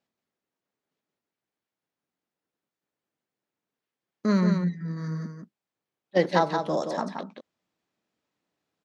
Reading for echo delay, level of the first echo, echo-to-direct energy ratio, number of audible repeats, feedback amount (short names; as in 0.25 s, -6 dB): 0.175 s, -5.5 dB, -5.5 dB, 1, no steady repeat